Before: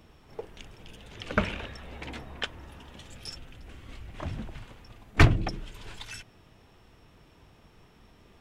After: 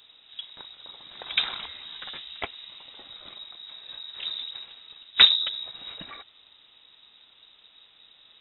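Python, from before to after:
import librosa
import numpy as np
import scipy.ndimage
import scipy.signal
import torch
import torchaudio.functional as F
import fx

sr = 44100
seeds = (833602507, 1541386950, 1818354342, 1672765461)

y = fx.freq_invert(x, sr, carrier_hz=3800)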